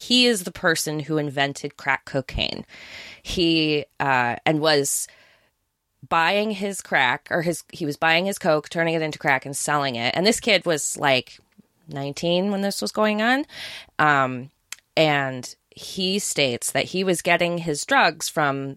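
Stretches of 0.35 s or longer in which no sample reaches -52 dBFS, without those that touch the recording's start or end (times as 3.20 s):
5.44–6.03 s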